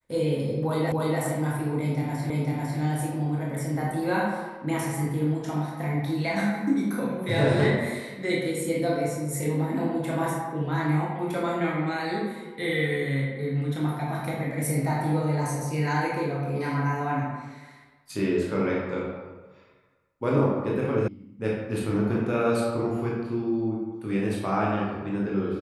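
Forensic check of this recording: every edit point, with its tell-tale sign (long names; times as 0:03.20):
0:00.92: the same again, the last 0.29 s
0:02.30: the same again, the last 0.5 s
0:21.08: cut off before it has died away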